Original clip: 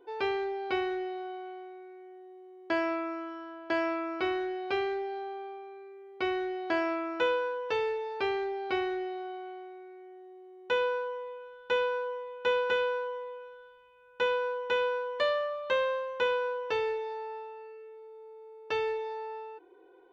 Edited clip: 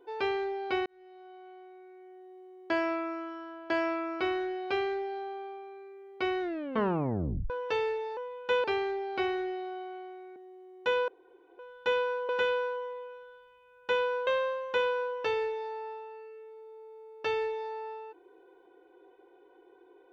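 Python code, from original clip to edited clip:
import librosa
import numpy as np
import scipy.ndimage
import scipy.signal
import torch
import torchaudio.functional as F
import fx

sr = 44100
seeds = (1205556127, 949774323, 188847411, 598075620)

y = fx.edit(x, sr, fx.fade_in_span(start_s=0.86, length_s=1.54),
    fx.tape_stop(start_s=6.41, length_s=1.09),
    fx.cut(start_s=9.89, length_s=0.31),
    fx.room_tone_fill(start_s=10.92, length_s=0.51),
    fx.move(start_s=12.13, length_s=0.47, to_s=8.17),
    fx.cut(start_s=14.58, length_s=1.15), tone=tone)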